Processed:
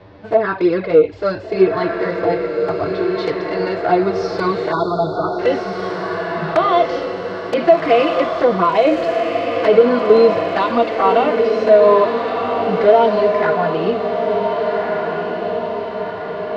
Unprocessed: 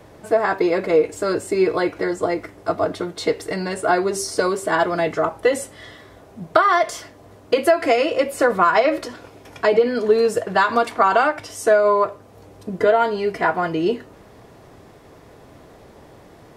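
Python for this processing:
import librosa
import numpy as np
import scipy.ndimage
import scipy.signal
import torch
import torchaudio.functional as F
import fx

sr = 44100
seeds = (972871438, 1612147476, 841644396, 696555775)

p1 = scipy.signal.sosfilt(scipy.signal.butter(6, 4600.0, 'lowpass', fs=sr, output='sos'), x)
p2 = fx.env_flanger(p1, sr, rest_ms=11.6, full_db=-12.5)
p3 = fx.echo_diffused(p2, sr, ms=1516, feedback_pct=60, wet_db=-5.5)
p4 = fx.fold_sine(p3, sr, drive_db=5, ceiling_db=-3.5)
p5 = p3 + (p4 * librosa.db_to_amplitude(-6.0))
p6 = fx.hpss(p5, sr, part='harmonic', gain_db=9)
p7 = fx.brickwall_bandstop(p6, sr, low_hz=1500.0, high_hz=3400.0, at=(4.71, 5.38), fade=0.02)
y = p7 * librosa.db_to_amplitude(-8.5)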